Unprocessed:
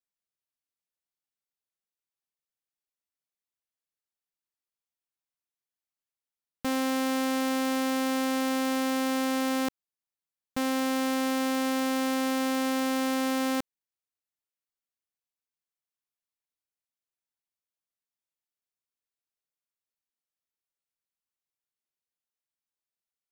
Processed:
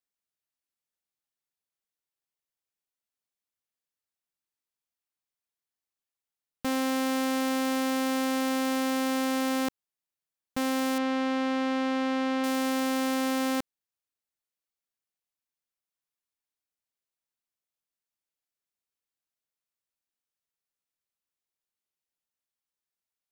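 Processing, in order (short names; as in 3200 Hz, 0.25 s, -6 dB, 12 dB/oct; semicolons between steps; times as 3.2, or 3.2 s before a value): 10.98–12.44 LPF 3600 Hz 12 dB/oct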